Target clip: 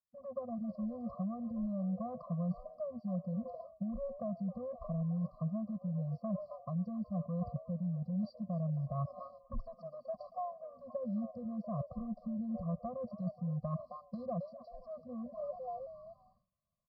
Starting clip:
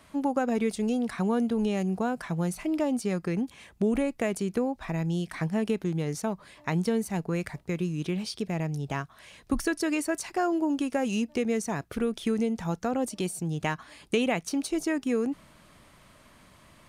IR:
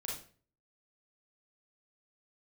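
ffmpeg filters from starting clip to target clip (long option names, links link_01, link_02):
-filter_complex "[0:a]afwtdn=0.0141,aresample=11025,aresample=44100,asplit=2[link_01][link_02];[link_02]asplit=4[link_03][link_04][link_05][link_06];[link_03]adelay=267,afreqshift=130,volume=-16dB[link_07];[link_04]adelay=534,afreqshift=260,volume=-22.9dB[link_08];[link_05]adelay=801,afreqshift=390,volume=-29.9dB[link_09];[link_06]adelay=1068,afreqshift=520,volume=-36.8dB[link_10];[link_07][link_08][link_09][link_10]amix=inputs=4:normalize=0[link_11];[link_01][link_11]amix=inputs=2:normalize=0,acrossover=split=130[link_12][link_13];[link_13]acompressor=threshold=-28dB:ratio=6[link_14];[link_12][link_14]amix=inputs=2:normalize=0,asuperstop=centerf=2300:order=20:qfactor=0.74,highshelf=frequency=3800:gain=-12,areverse,acompressor=threshold=-40dB:ratio=10,areverse,agate=range=-33dB:threshold=-58dB:ratio=3:detection=peak,afftfilt=real='re*eq(mod(floor(b*sr/1024/250),2),0)':imag='im*eq(mod(floor(b*sr/1024/250),2),0)':win_size=1024:overlap=0.75,volume=8dB"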